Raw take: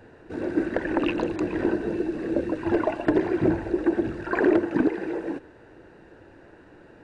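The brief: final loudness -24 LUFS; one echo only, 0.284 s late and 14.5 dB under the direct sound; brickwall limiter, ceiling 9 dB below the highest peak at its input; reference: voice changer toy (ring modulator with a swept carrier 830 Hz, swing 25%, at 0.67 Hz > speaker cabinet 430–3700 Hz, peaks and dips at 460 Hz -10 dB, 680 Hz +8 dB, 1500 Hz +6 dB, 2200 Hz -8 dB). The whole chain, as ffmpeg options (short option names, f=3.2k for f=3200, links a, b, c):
-af "alimiter=limit=-18dB:level=0:latency=1,aecho=1:1:284:0.188,aeval=exprs='val(0)*sin(2*PI*830*n/s+830*0.25/0.67*sin(2*PI*0.67*n/s))':c=same,highpass=430,equalizer=f=460:t=q:w=4:g=-10,equalizer=f=680:t=q:w=4:g=8,equalizer=f=1.5k:t=q:w=4:g=6,equalizer=f=2.2k:t=q:w=4:g=-8,lowpass=f=3.7k:w=0.5412,lowpass=f=3.7k:w=1.3066,volume=5.5dB"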